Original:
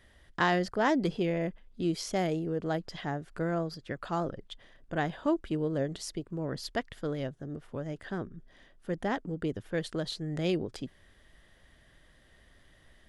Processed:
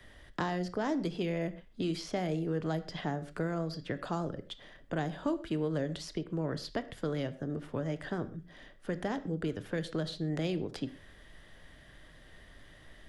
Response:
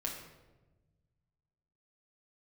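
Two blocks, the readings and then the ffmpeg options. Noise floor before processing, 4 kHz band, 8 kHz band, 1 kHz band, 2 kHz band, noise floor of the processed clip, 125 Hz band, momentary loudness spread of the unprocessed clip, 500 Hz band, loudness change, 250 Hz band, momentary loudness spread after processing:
-62 dBFS, -2.5 dB, -6.0 dB, -5.5 dB, -5.5 dB, -56 dBFS, -0.5 dB, 12 LU, -3.0 dB, -2.5 dB, -1.5 dB, 9 LU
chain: -filter_complex "[0:a]acrossover=split=95|260|840|4800[s0][s1][s2][s3][s4];[s0]acompressor=threshold=0.00126:ratio=4[s5];[s1]acompressor=threshold=0.00562:ratio=4[s6];[s2]acompressor=threshold=0.00794:ratio=4[s7];[s3]acompressor=threshold=0.00355:ratio=4[s8];[s4]acompressor=threshold=0.00141:ratio=4[s9];[s5][s6][s7][s8][s9]amix=inputs=5:normalize=0,asplit=2[s10][s11];[1:a]atrim=start_sample=2205,afade=t=out:st=0.19:d=0.01,atrim=end_sample=8820,lowpass=6500[s12];[s11][s12]afir=irnorm=-1:irlink=0,volume=0.447[s13];[s10][s13]amix=inputs=2:normalize=0,volume=1.41"

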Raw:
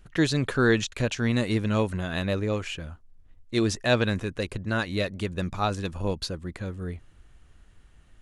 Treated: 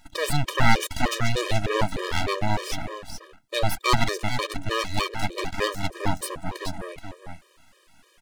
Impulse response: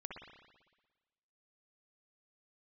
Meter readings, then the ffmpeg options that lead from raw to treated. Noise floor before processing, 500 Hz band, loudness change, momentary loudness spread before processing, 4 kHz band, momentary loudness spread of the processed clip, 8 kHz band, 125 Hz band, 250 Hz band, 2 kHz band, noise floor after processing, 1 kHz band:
-56 dBFS, -1.5 dB, +0.5 dB, 12 LU, +4.0 dB, 15 LU, +5.0 dB, -1.0 dB, -5.0 dB, +2.0 dB, -60 dBFS, +7.5 dB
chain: -filter_complex "[0:a]highpass=190,aecho=1:1:425:0.299,asplit=2[s0][s1];[s1]acompressor=threshold=0.0126:ratio=6,volume=1.19[s2];[s0][s2]amix=inputs=2:normalize=0,aeval=exprs='abs(val(0))':c=same,afftfilt=real='re*gt(sin(2*PI*3.3*pts/sr)*(1-2*mod(floor(b*sr/1024/320),2)),0)':imag='im*gt(sin(2*PI*3.3*pts/sr)*(1-2*mod(floor(b*sr/1024/320),2)),0)':win_size=1024:overlap=0.75,volume=2.11"

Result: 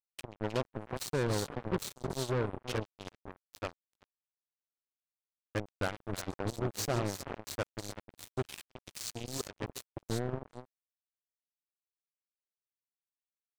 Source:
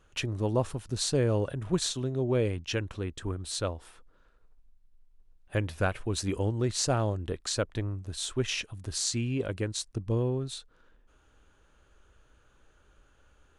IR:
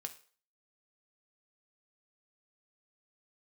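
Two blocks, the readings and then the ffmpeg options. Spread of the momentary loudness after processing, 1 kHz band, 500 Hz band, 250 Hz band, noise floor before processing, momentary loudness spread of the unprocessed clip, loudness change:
15 LU, -2.5 dB, -6.0 dB, -7.0 dB, -64 dBFS, 8 LU, -6.5 dB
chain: -af "afwtdn=0.00891,aecho=1:1:134|313|369:0.1|0.316|0.422,acrusher=bits=3:mix=0:aa=0.5,volume=0.473"

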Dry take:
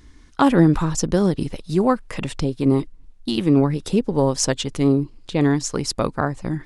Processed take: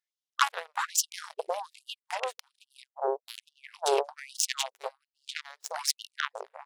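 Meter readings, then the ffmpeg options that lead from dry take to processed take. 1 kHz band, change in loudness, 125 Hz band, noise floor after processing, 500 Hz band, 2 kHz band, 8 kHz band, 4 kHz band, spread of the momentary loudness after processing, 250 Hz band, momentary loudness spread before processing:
-6.0 dB, -11.5 dB, under -40 dB, under -85 dBFS, -12.0 dB, -3.5 dB, -3.5 dB, -3.5 dB, 16 LU, under -35 dB, 9 LU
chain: -filter_complex "[0:a]acrossover=split=470[s0][s1];[s0]adelay=360[s2];[s2][s1]amix=inputs=2:normalize=0,aeval=exprs='0.75*(cos(1*acos(clip(val(0)/0.75,-1,1)))-cos(1*PI/2))+0.0335*(cos(3*acos(clip(val(0)/0.75,-1,1)))-cos(3*PI/2))+0.0531*(cos(5*acos(clip(val(0)/0.75,-1,1)))-cos(5*PI/2))+0.133*(cos(7*acos(clip(val(0)/0.75,-1,1)))-cos(7*PI/2))':c=same,afftfilt=real='re*gte(b*sr/1024,370*pow(2800/370,0.5+0.5*sin(2*PI*1.2*pts/sr)))':imag='im*gte(b*sr/1024,370*pow(2800/370,0.5+0.5*sin(2*PI*1.2*pts/sr)))':win_size=1024:overlap=0.75"

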